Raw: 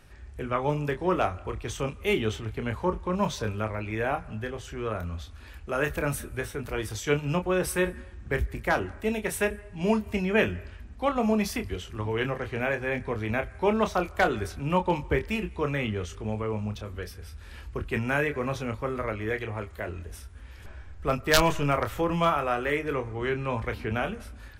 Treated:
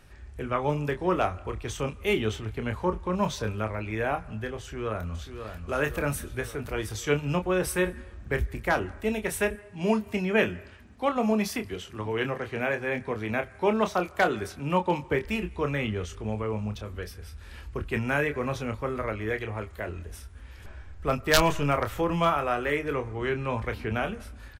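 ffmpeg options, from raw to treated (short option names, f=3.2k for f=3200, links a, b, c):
-filter_complex "[0:a]asplit=2[a][b];[b]afade=t=in:st=4.6:d=0.01,afade=t=out:st=5.65:d=0.01,aecho=0:1:540|1080|1620|2160|2700|3240|3780|4320:0.398107|0.238864|0.143319|0.0859911|0.0515947|0.0309568|0.0185741|0.0111445[c];[a][c]amix=inputs=2:normalize=0,asettb=1/sr,asplit=3[d][e][f];[d]atrim=end=9.554[g];[e]atrim=start=9.55:end=15.25,asetpts=PTS-STARTPTS,afade=t=in:d=0.004:c=qsin,afade=t=out:st=5.696:d=0.004:c=qsin,highpass=120[h];[f]atrim=start=15.246[i];[g][h]acrossfade=d=0.004:c1=hsin:c2=qsin[j];[j][i]acrossfade=d=0.004:c1=qsin:c2=hsin"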